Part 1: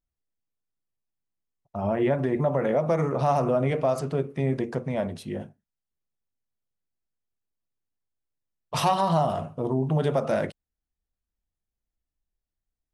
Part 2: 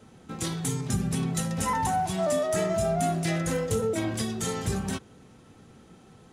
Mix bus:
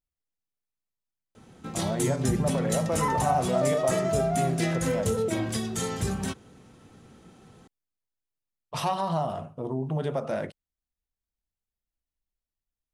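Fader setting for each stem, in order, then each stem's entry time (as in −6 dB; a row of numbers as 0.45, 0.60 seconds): −5.0, 0.0 decibels; 0.00, 1.35 seconds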